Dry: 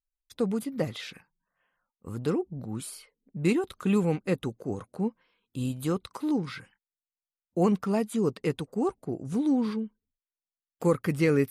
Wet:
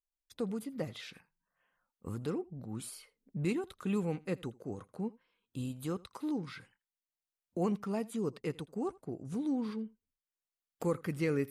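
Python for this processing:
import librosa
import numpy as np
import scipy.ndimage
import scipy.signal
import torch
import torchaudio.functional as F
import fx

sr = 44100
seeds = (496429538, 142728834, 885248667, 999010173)

p1 = fx.recorder_agc(x, sr, target_db=-21.5, rise_db_per_s=7.2, max_gain_db=30)
p2 = p1 + fx.echo_single(p1, sr, ms=82, db=-23.0, dry=0)
y = p2 * 10.0 ** (-8.5 / 20.0)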